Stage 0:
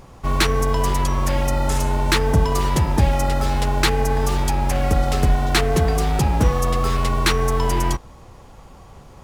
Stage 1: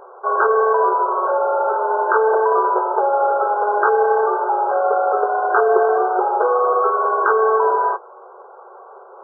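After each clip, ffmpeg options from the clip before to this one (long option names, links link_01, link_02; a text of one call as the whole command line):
ffmpeg -i in.wav -af "afftfilt=real='re*between(b*sr/4096,360,1600)':imag='im*between(b*sr/4096,360,1600)':win_size=4096:overlap=0.75,volume=8.5dB" out.wav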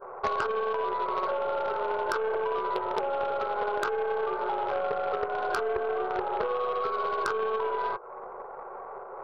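ffmpeg -i in.wav -af "adynamicequalizer=threshold=0.0316:dfrequency=800:dqfactor=1.6:tfrequency=800:tqfactor=1.6:attack=5:release=100:ratio=0.375:range=3:mode=cutabove:tftype=bell,acompressor=threshold=-26dB:ratio=12,aeval=exprs='0.15*(cos(1*acos(clip(val(0)/0.15,-1,1)))-cos(1*PI/2))+0.0422*(cos(4*acos(clip(val(0)/0.15,-1,1)))-cos(4*PI/2))+0.0299*(cos(6*acos(clip(val(0)/0.15,-1,1)))-cos(6*PI/2))':channel_layout=same" out.wav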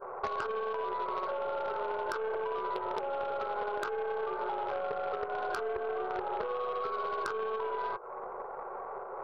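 ffmpeg -i in.wav -af "acompressor=threshold=-31dB:ratio=6" out.wav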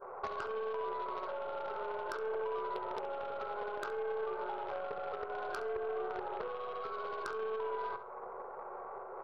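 ffmpeg -i in.wav -filter_complex "[0:a]asplit=2[link_01][link_02];[link_02]adelay=68,lowpass=frequency=2600:poles=1,volume=-8.5dB,asplit=2[link_03][link_04];[link_04]adelay=68,lowpass=frequency=2600:poles=1,volume=0.44,asplit=2[link_05][link_06];[link_06]adelay=68,lowpass=frequency=2600:poles=1,volume=0.44,asplit=2[link_07][link_08];[link_08]adelay=68,lowpass=frequency=2600:poles=1,volume=0.44,asplit=2[link_09][link_10];[link_10]adelay=68,lowpass=frequency=2600:poles=1,volume=0.44[link_11];[link_01][link_03][link_05][link_07][link_09][link_11]amix=inputs=6:normalize=0,volume=-5dB" out.wav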